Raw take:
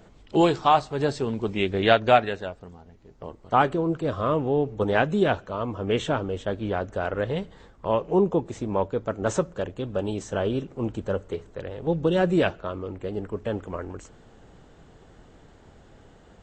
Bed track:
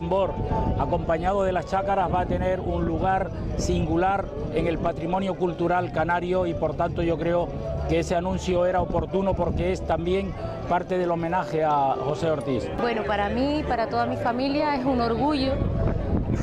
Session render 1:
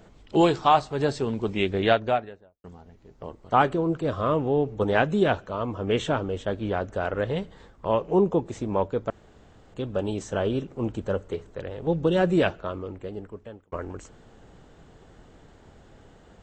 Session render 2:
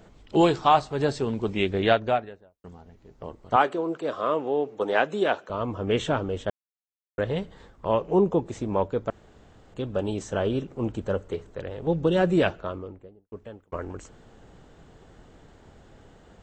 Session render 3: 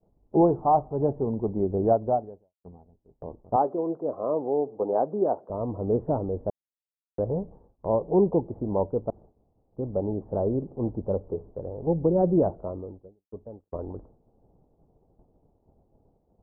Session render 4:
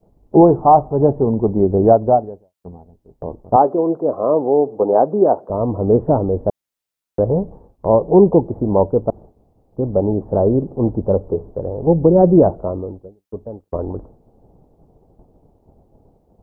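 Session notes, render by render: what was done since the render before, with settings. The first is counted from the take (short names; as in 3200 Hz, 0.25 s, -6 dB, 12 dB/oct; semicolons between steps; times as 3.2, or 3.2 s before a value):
1.64–2.64 studio fade out; 9.1–9.74 room tone; 12.7–13.72 fade out linear
3.56–5.5 HPF 350 Hz; 6.5–7.18 mute; 12.59–13.32 studio fade out
steep low-pass 880 Hz 36 dB/oct; expander -42 dBFS
gain +11 dB; limiter -1 dBFS, peak gain reduction 2 dB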